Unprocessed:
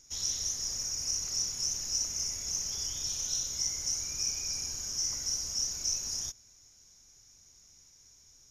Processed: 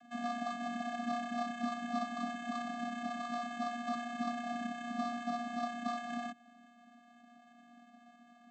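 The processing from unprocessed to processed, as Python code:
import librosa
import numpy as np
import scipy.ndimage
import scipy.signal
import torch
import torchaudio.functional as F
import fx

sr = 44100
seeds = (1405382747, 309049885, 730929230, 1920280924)

y = fx.dynamic_eq(x, sr, hz=4800.0, q=1.3, threshold_db=-45.0, ratio=4.0, max_db=-4)
y = fx.sample_hold(y, sr, seeds[0], rate_hz=4900.0, jitter_pct=0)
y = fx.vocoder(y, sr, bands=16, carrier='square', carrier_hz=238.0)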